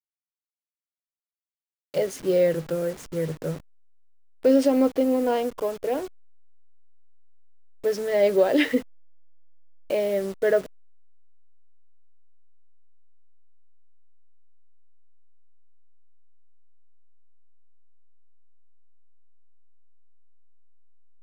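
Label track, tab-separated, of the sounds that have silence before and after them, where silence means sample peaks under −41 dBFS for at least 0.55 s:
1.940000	3.600000	sound
4.430000	6.080000	sound
7.840000	8.820000	sound
9.900000	10.660000	sound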